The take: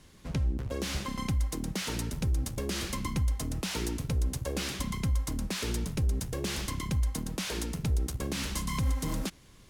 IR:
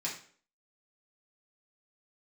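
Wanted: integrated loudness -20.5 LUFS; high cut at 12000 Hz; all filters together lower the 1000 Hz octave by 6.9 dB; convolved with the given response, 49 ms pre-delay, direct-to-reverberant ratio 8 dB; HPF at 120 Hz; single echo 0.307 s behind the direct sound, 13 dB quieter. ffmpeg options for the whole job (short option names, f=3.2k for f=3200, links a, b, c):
-filter_complex "[0:a]highpass=120,lowpass=12k,equalizer=f=1k:t=o:g=-8,aecho=1:1:307:0.224,asplit=2[a][b];[1:a]atrim=start_sample=2205,adelay=49[c];[b][c]afir=irnorm=-1:irlink=0,volume=-11.5dB[d];[a][d]amix=inputs=2:normalize=0,volume=14.5dB"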